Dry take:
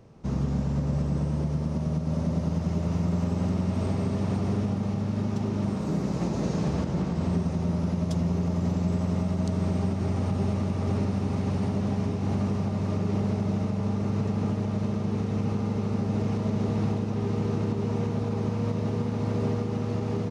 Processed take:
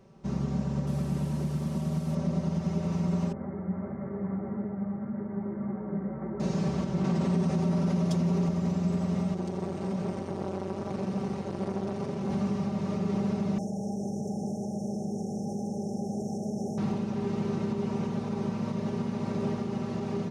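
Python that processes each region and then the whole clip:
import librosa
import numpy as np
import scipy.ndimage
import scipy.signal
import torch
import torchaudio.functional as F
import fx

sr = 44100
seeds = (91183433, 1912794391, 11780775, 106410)

y = fx.chain(x, sr, fx.delta_mod(bps=64000, step_db=-42.0),
    fx.peak_eq(hz=490.0, db=-4.5, octaves=0.35), at=(0.87, 2.15))
y = fx.chain(y, sr, fx.cheby_ripple(hz=2100.0, ripple_db=3),
    fx.ensemble(), at=(3.32, 6.4))
y = fx.chain(y, sr, fx.highpass(hz=100.0, slope=12),
    fx.env_flatten(amount_pct=70), at=(7.04, 8.49))
y = fx.chain(y, sr, fx.echo_single(ms=369, db=-6.0),
    fx.transformer_sat(knee_hz=490.0), at=(9.34, 12.3))
y = fx.chain(y, sr, fx.brickwall_bandstop(low_hz=880.0, high_hz=5300.0),
    fx.tilt_eq(slope=2.0),
    fx.env_flatten(amount_pct=50), at=(13.58, 16.78))
y = fx.low_shelf(y, sr, hz=66.0, db=-6.5)
y = y + 0.65 * np.pad(y, (int(5.2 * sr / 1000.0), 0))[:len(y)]
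y = F.gain(torch.from_numpy(y), -3.5).numpy()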